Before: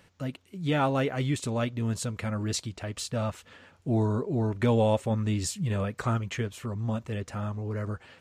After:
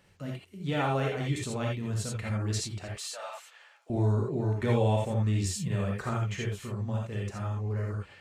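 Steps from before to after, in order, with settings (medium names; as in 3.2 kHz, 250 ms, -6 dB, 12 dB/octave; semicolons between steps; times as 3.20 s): 2.88–3.90 s: high-pass 660 Hz 24 dB/octave; gated-style reverb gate 100 ms rising, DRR -1.5 dB; trim -5.5 dB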